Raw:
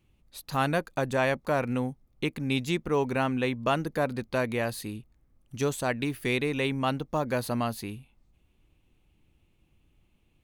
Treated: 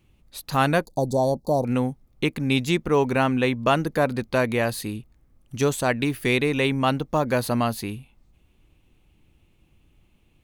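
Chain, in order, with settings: 0.85–1.65 elliptic band-stop 870–4300 Hz, stop band 40 dB; gain +6 dB

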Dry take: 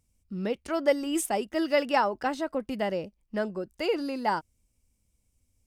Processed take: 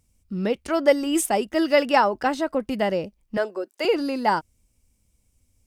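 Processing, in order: 3.37–3.85 HPF 340 Hz 24 dB/oct; gain +6 dB

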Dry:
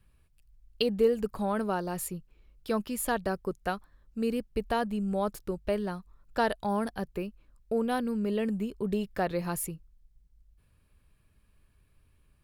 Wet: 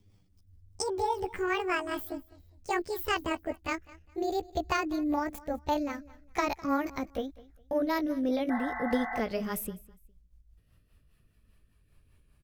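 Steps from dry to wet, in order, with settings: gliding pitch shift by +12 st ending unshifted; rotary speaker horn 5 Hz; spectral repair 8.53–9.17, 700–2100 Hz after; feedback echo 0.204 s, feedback 27%, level -21 dB; gain +3 dB

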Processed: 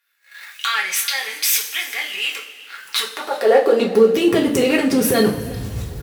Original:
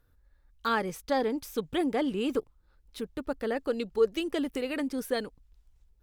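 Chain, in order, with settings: recorder AGC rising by 66 dB/s; sample leveller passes 2; low shelf 290 Hz +7 dB; compressor 2.5:1, threshold -23 dBFS, peak gain reduction 9 dB; low shelf 94 Hz -8 dB; transient shaper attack -7 dB, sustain +1 dB; high-pass sweep 2200 Hz -> 110 Hz, 2.63–4.48; on a send: frequency-shifting echo 0.372 s, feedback 33%, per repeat +33 Hz, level -22.5 dB; on the sum: two-slope reverb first 0.33 s, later 2.2 s, from -17 dB, DRR -2.5 dB; gain +7 dB

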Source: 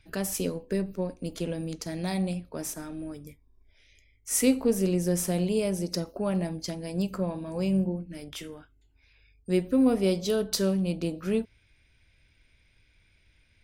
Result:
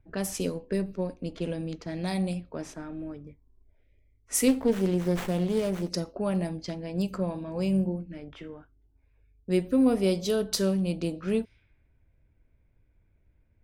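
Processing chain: low-pass opened by the level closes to 750 Hz, open at -25.5 dBFS; 4.48–5.9 running maximum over 9 samples

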